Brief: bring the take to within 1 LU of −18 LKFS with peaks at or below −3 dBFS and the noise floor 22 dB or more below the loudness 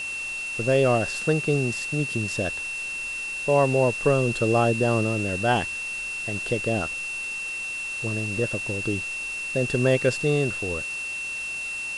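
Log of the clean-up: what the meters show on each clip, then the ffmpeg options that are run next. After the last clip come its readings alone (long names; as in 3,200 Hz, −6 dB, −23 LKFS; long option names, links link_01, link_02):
interfering tone 2,700 Hz; level of the tone −29 dBFS; background noise floor −32 dBFS; target noise floor −47 dBFS; integrated loudness −24.5 LKFS; sample peak −9.0 dBFS; target loudness −18.0 LKFS
→ -af "bandreject=frequency=2700:width=30"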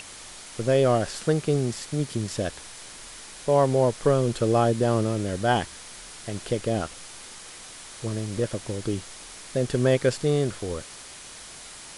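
interfering tone none found; background noise floor −43 dBFS; target noise floor −48 dBFS
→ -af "afftdn=noise_reduction=6:noise_floor=-43"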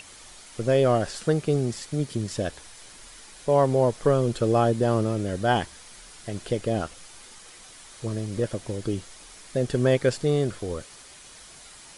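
background noise floor −48 dBFS; integrated loudness −25.5 LKFS; sample peak −8.5 dBFS; target loudness −18.0 LKFS
→ -af "volume=7.5dB,alimiter=limit=-3dB:level=0:latency=1"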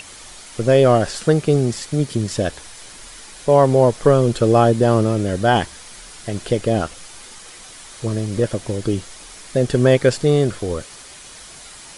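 integrated loudness −18.0 LKFS; sample peak −3.0 dBFS; background noise floor −40 dBFS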